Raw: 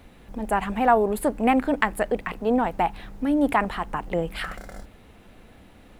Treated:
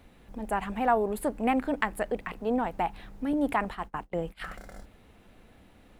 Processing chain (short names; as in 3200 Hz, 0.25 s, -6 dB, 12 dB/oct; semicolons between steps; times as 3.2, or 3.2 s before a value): 3.33–4.45 gate -30 dBFS, range -27 dB; gain -6 dB